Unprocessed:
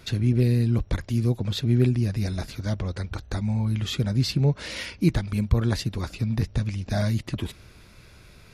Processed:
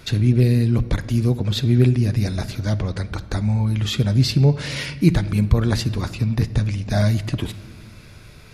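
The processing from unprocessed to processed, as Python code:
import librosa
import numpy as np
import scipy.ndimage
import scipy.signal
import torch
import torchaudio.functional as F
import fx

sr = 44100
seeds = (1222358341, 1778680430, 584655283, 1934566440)

y = fx.room_shoebox(x, sr, seeds[0], volume_m3=1700.0, walls='mixed', distance_m=0.39)
y = y * 10.0 ** (5.0 / 20.0)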